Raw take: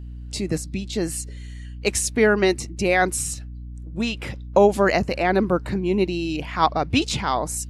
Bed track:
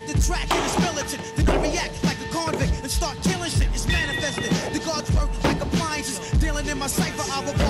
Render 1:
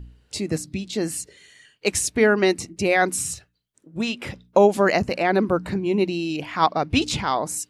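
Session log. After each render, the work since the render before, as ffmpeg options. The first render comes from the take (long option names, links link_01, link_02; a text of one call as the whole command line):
ffmpeg -i in.wav -af "bandreject=frequency=60:width_type=h:width=4,bandreject=frequency=120:width_type=h:width=4,bandreject=frequency=180:width_type=h:width=4,bandreject=frequency=240:width_type=h:width=4,bandreject=frequency=300:width_type=h:width=4" out.wav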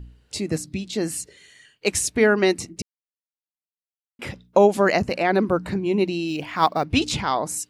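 ffmpeg -i in.wav -filter_complex "[0:a]asplit=3[link_01][link_02][link_03];[link_01]afade=type=out:start_time=6.27:duration=0.02[link_04];[link_02]acrusher=bits=9:mode=log:mix=0:aa=0.000001,afade=type=in:start_time=6.27:duration=0.02,afade=type=out:start_time=6.83:duration=0.02[link_05];[link_03]afade=type=in:start_time=6.83:duration=0.02[link_06];[link_04][link_05][link_06]amix=inputs=3:normalize=0,asplit=3[link_07][link_08][link_09];[link_07]atrim=end=2.82,asetpts=PTS-STARTPTS,afade=type=out:start_time=2.816:duration=0.004:curve=hsin[link_10];[link_08]atrim=start=2.82:end=4.19,asetpts=PTS-STARTPTS,volume=0[link_11];[link_09]atrim=start=4.19,asetpts=PTS-STARTPTS,afade=type=in:duration=0.004:curve=hsin[link_12];[link_10][link_11][link_12]concat=n=3:v=0:a=1" out.wav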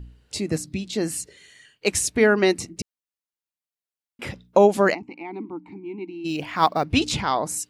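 ffmpeg -i in.wav -filter_complex "[0:a]asplit=3[link_01][link_02][link_03];[link_01]afade=type=out:start_time=4.93:duration=0.02[link_04];[link_02]asplit=3[link_05][link_06][link_07];[link_05]bandpass=frequency=300:width_type=q:width=8,volume=0dB[link_08];[link_06]bandpass=frequency=870:width_type=q:width=8,volume=-6dB[link_09];[link_07]bandpass=frequency=2240:width_type=q:width=8,volume=-9dB[link_10];[link_08][link_09][link_10]amix=inputs=3:normalize=0,afade=type=in:start_time=4.93:duration=0.02,afade=type=out:start_time=6.24:duration=0.02[link_11];[link_03]afade=type=in:start_time=6.24:duration=0.02[link_12];[link_04][link_11][link_12]amix=inputs=3:normalize=0" out.wav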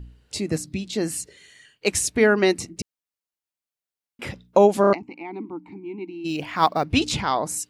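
ffmpeg -i in.wav -filter_complex "[0:a]asplit=5[link_01][link_02][link_03][link_04][link_05];[link_01]atrim=end=4.842[link_06];[link_02]atrim=start=4.808:end=4.842[link_07];[link_03]atrim=start=4.808:end=4.842[link_08];[link_04]atrim=start=4.808:end=4.842[link_09];[link_05]atrim=start=4.928[link_10];[link_06][link_07]acrossfade=duration=0.004:curve1=hsin:curve2=hsin[link_11];[link_11][link_08]acrossfade=duration=0.004:curve1=hsin:curve2=hsin[link_12];[link_12][link_09]acrossfade=duration=0.004:curve1=hsin:curve2=hsin[link_13];[link_13][link_10]acrossfade=duration=0.004:curve1=hsin:curve2=hsin" out.wav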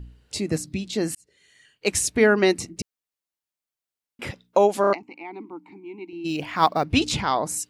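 ffmpeg -i in.wav -filter_complex "[0:a]asettb=1/sr,asplit=3[link_01][link_02][link_03];[link_01]atrim=end=4.314[link_04];[link_02]atrim=start=4.31:end=6.13,asetpts=PTS-STARTPTS,afade=type=in:duration=0.004:curve=qsin,afade=type=out:start_time=1.816:duration=0.004:curve=qsin,highpass=frequency=450:poles=1[link_05];[link_03]atrim=start=6.126[link_06];[link_04][link_05]acrossfade=duration=0.004:curve1=hsin:curve2=qsin[link_07];[link_07][link_06]acrossfade=duration=0.004:curve1=qsin:curve2=hsin,asplit=2[link_08][link_09];[link_08]atrim=end=1.15,asetpts=PTS-STARTPTS,afade=type=out:start_time=1.146:duration=0.004:curve=hsin[link_10];[link_09]atrim=start=1.15,asetpts=PTS-STARTPTS,afade=type=in:duration=0.83[link_11];[link_10][link_11]concat=n=2:v=0:a=1" out.wav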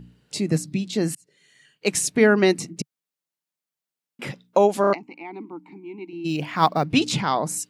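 ffmpeg -i in.wav -af "lowshelf=frequency=110:width_type=q:width=3:gain=-9.5" out.wav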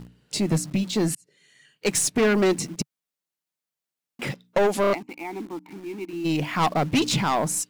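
ffmpeg -i in.wav -filter_complex "[0:a]aeval=exprs='(tanh(8.91*val(0)+0.15)-tanh(0.15))/8.91':channel_layout=same,asplit=2[link_01][link_02];[link_02]acrusher=bits=6:mix=0:aa=0.000001,volume=-7dB[link_03];[link_01][link_03]amix=inputs=2:normalize=0" out.wav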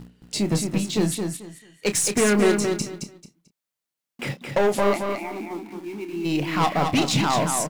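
ffmpeg -i in.wav -filter_complex "[0:a]asplit=2[link_01][link_02];[link_02]adelay=29,volume=-10dB[link_03];[link_01][link_03]amix=inputs=2:normalize=0,aecho=1:1:220|440|660:0.531|0.122|0.0281" out.wav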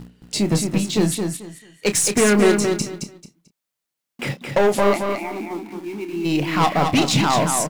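ffmpeg -i in.wav -af "volume=3.5dB" out.wav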